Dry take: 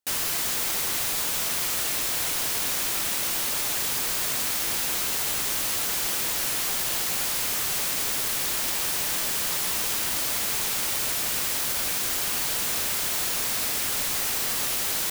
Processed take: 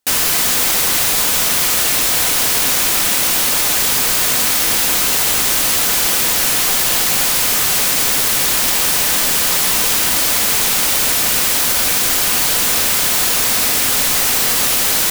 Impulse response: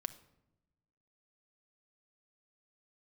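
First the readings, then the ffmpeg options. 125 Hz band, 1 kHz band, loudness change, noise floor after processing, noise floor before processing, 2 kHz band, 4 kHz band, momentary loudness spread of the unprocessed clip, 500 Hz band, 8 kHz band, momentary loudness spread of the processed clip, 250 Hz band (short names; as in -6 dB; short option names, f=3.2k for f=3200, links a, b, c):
+11.5 dB, +12.0 dB, +12.0 dB, -15 dBFS, -27 dBFS, +12.0 dB, +12.0 dB, 0 LU, +12.0 dB, +12.0 dB, 0 LU, +12.5 dB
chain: -filter_complex "[0:a]asplit=2[a][b];[1:a]atrim=start_sample=2205,asetrate=61740,aresample=44100[c];[b][c]afir=irnorm=-1:irlink=0,volume=9dB[d];[a][d]amix=inputs=2:normalize=0,volume=3.5dB"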